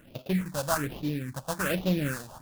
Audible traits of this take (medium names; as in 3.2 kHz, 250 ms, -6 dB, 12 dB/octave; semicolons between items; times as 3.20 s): aliases and images of a low sample rate 2.1 kHz, jitter 20%; phasing stages 4, 1.2 Hz, lowest notch 350–1600 Hz